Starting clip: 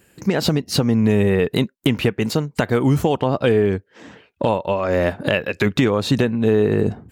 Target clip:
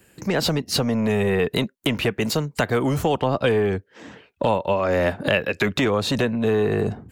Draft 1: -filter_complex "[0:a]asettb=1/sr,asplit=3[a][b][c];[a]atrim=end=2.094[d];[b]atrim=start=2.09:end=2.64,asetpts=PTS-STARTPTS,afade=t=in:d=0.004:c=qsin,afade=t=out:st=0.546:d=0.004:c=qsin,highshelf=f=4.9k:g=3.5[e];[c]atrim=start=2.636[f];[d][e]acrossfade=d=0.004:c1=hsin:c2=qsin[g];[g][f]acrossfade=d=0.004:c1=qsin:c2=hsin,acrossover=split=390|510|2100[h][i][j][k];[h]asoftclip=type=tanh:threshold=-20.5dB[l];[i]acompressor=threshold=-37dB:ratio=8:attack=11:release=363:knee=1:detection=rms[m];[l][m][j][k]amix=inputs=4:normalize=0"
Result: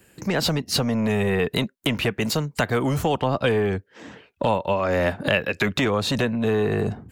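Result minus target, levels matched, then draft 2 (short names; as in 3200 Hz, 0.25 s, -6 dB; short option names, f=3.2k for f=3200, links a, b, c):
compressor: peak gain reduction +9 dB
-filter_complex "[0:a]asettb=1/sr,asplit=3[a][b][c];[a]atrim=end=2.094[d];[b]atrim=start=2.09:end=2.64,asetpts=PTS-STARTPTS,afade=t=in:d=0.004:c=qsin,afade=t=out:st=0.546:d=0.004:c=qsin,highshelf=f=4.9k:g=3.5[e];[c]atrim=start=2.636[f];[d][e]acrossfade=d=0.004:c1=hsin:c2=qsin[g];[g][f]acrossfade=d=0.004:c1=qsin:c2=hsin,acrossover=split=390|510|2100[h][i][j][k];[h]asoftclip=type=tanh:threshold=-20.5dB[l];[i]acompressor=threshold=-27dB:ratio=8:attack=11:release=363:knee=1:detection=rms[m];[l][m][j][k]amix=inputs=4:normalize=0"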